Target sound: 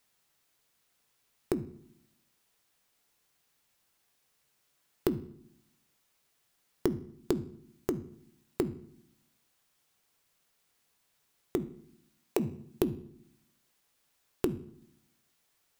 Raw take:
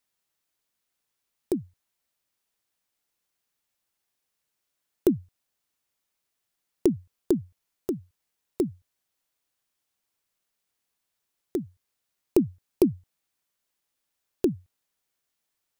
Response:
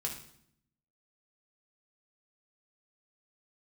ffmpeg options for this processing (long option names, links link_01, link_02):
-filter_complex "[0:a]asettb=1/sr,asplit=3[link_01][link_02][link_03];[link_01]atrim=end=11.644[link_04];[link_02]atrim=start=11.64:end=12.4,asetpts=PTS-STARTPTS,afade=type=in:duration=0.004:curve=qsin,afade=type=out:start_time=0.756:duration=0.004:curve=qsin,highpass=420[link_05];[link_03]atrim=start=12.396[link_06];[link_04][link_05]acrossfade=duration=0.004:curve1=hsin:curve2=qsin[link_07];[link_07][link_06]acrossfade=duration=0.004:curve1=qsin:curve2=hsin,acompressor=threshold=-40dB:ratio=3,asplit=2[link_08][link_09];[1:a]atrim=start_sample=2205,highshelf=frequency=6300:gain=-10[link_10];[link_09][link_10]afir=irnorm=-1:irlink=0,volume=-7dB[link_11];[link_08][link_11]amix=inputs=2:normalize=0,volume=5.5dB"